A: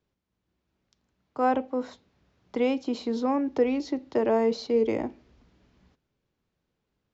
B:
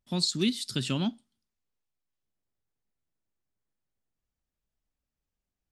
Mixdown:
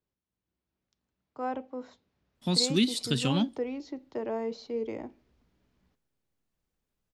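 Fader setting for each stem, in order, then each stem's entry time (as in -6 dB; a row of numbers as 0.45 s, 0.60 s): -9.5 dB, +2.0 dB; 0.00 s, 2.35 s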